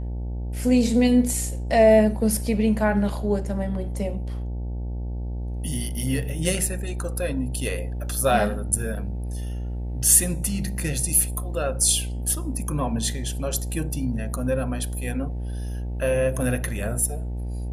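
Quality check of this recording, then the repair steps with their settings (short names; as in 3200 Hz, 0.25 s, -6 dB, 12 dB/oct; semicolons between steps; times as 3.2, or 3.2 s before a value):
buzz 60 Hz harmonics 15 -29 dBFS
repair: de-hum 60 Hz, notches 15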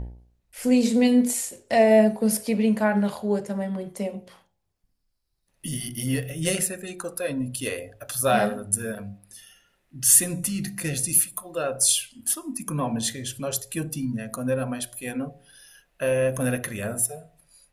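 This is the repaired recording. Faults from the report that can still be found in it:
none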